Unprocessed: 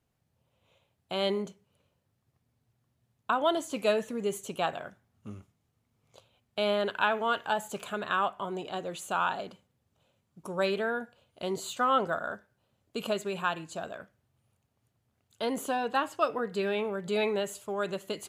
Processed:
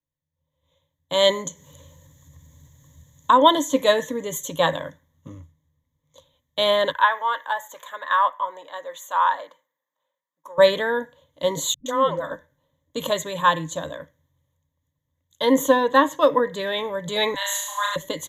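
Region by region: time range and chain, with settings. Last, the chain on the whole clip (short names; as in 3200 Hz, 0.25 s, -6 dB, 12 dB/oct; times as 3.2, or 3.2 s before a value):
1.12–3.38 bell 7000 Hz +10.5 dB 0.39 oct + upward compressor, threshold -40 dBFS
6.92–10.58 HPF 880 Hz + band shelf 5400 Hz -8.5 dB 2.5 oct
11.74–12.31 compressor 1.5:1, threshold -42 dBFS + dispersion highs, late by 0.119 s, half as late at 310 Hz
17.34–17.96 steep high-pass 840 Hz + flutter echo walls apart 6 m, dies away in 1 s
whole clip: ripple EQ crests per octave 1.1, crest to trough 17 dB; AGC gain up to 11 dB; three-band expander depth 40%; gain -2.5 dB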